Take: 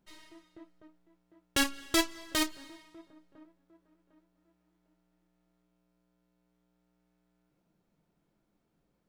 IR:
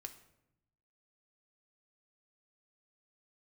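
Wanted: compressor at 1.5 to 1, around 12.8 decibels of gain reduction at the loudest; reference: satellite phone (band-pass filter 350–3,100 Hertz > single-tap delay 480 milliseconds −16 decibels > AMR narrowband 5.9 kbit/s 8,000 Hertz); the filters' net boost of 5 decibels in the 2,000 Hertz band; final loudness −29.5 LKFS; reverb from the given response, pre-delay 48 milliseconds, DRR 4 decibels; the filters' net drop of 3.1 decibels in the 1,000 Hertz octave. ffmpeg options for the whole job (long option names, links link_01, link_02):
-filter_complex "[0:a]equalizer=frequency=1000:width_type=o:gain=-7.5,equalizer=frequency=2000:width_type=o:gain=9,acompressor=threshold=-57dB:ratio=1.5,asplit=2[link_01][link_02];[1:a]atrim=start_sample=2205,adelay=48[link_03];[link_02][link_03]afir=irnorm=-1:irlink=0,volume=0.5dB[link_04];[link_01][link_04]amix=inputs=2:normalize=0,highpass=350,lowpass=3100,aecho=1:1:480:0.158,volume=18dB" -ar 8000 -c:a libopencore_amrnb -b:a 5900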